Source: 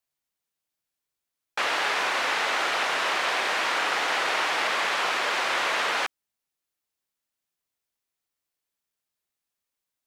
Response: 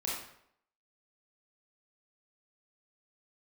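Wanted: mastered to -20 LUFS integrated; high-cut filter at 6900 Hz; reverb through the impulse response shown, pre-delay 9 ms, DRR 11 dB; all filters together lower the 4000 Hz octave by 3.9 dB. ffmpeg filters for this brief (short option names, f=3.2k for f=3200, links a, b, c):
-filter_complex "[0:a]lowpass=6.9k,equalizer=f=4k:t=o:g=-5,asplit=2[a][b];[1:a]atrim=start_sample=2205,adelay=9[c];[b][c]afir=irnorm=-1:irlink=0,volume=-15dB[d];[a][d]amix=inputs=2:normalize=0,volume=5.5dB"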